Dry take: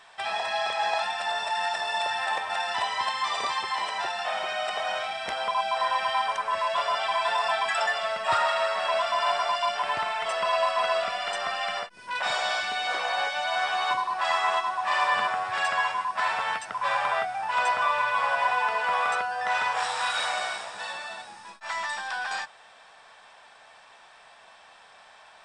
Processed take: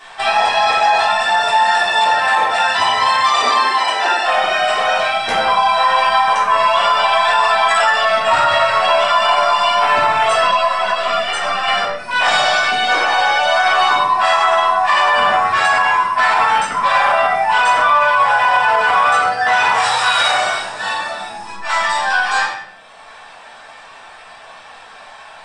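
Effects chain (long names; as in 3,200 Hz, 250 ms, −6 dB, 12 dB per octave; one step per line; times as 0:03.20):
reverb reduction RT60 1.2 s
0:03.17–0:04.22: Butterworth high-pass 220 Hz 96 dB per octave
rectangular room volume 230 cubic metres, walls mixed, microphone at 3.3 metres
boost into a limiter +10.5 dB
0:10.51–0:11.68: string-ensemble chorus
level −3.5 dB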